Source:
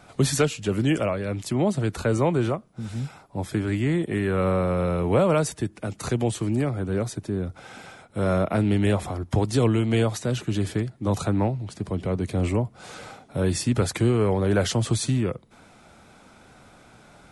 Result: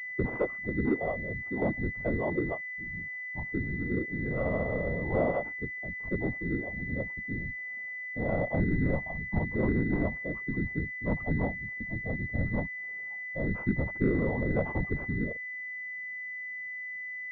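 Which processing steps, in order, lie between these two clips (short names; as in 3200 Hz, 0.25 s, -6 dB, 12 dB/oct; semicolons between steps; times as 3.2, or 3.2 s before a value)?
spectral noise reduction 16 dB; whisperiser; pulse-width modulation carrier 2000 Hz; gain -5 dB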